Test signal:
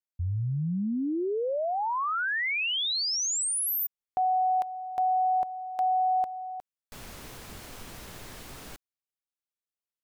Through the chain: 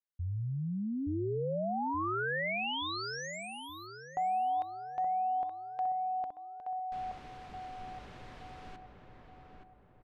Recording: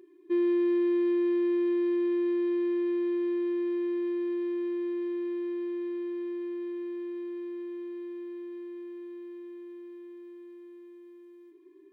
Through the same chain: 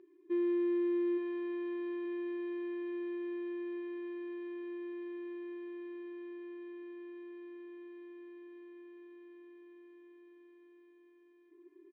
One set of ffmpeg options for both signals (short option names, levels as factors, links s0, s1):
-filter_complex "[0:a]lowpass=3200,asplit=2[s0][s1];[s1]adelay=874,lowpass=f=1500:p=1,volume=0.631,asplit=2[s2][s3];[s3]adelay=874,lowpass=f=1500:p=1,volume=0.47,asplit=2[s4][s5];[s5]adelay=874,lowpass=f=1500:p=1,volume=0.47,asplit=2[s6][s7];[s7]adelay=874,lowpass=f=1500:p=1,volume=0.47,asplit=2[s8][s9];[s9]adelay=874,lowpass=f=1500:p=1,volume=0.47,asplit=2[s10][s11];[s11]adelay=874,lowpass=f=1500:p=1,volume=0.47[s12];[s2][s4][s6][s8][s10][s12]amix=inputs=6:normalize=0[s13];[s0][s13]amix=inputs=2:normalize=0,volume=0.501"